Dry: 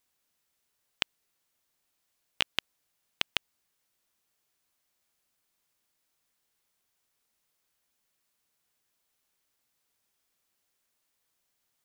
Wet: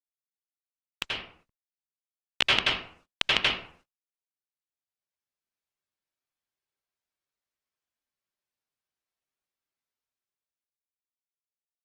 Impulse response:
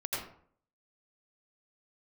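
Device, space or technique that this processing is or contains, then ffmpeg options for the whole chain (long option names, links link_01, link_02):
speakerphone in a meeting room: -filter_complex "[0:a]lowpass=6600[link_01];[1:a]atrim=start_sample=2205[link_02];[link_01][link_02]afir=irnorm=-1:irlink=0,dynaudnorm=framelen=270:gausssize=13:maxgain=15.5dB,agate=range=-30dB:threshold=-57dB:ratio=16:detection=peak,volume=-1dB" -ar 48000 -c:a libopus -b:a 20k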